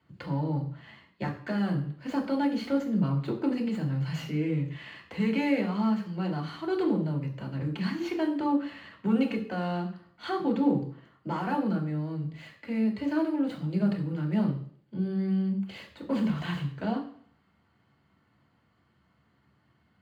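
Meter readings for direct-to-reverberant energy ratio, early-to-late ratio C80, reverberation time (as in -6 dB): -1.5 dB, 13.0 dB, 0.55 s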